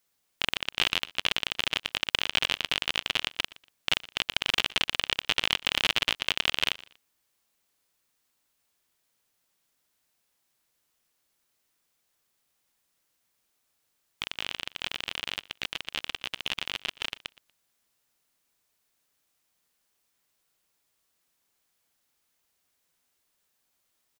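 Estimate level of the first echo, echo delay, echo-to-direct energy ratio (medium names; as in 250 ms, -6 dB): -20.5 dB, 119 ms, -20.0 dB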